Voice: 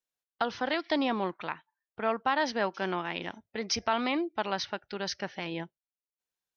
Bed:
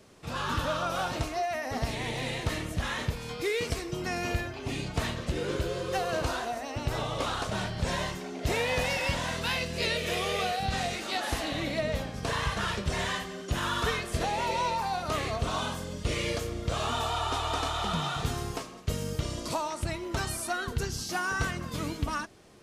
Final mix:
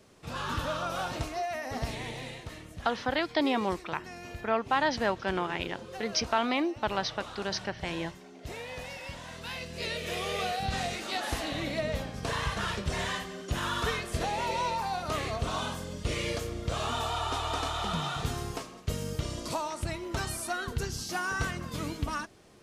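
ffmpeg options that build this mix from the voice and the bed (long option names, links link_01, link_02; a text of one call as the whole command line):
ffmpeg -i stem1.wav -i stem2.wav -filter_complex "[0:a]adelay=2450,volume=1dB[link_01];[1:a]volume=8dB,afade=type=out:start_time=1.87:duration=0.6:silence=0.334965,afade=type=in:start_time=9.25:duration=1.31:silence=0.298538[link_02];[link_01][link_02]amix=inputs=2:normalize=0" out.wav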